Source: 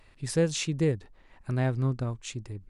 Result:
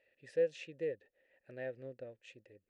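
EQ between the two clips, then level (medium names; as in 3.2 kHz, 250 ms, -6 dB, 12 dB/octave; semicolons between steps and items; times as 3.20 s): vowel filter e; -1.0 dB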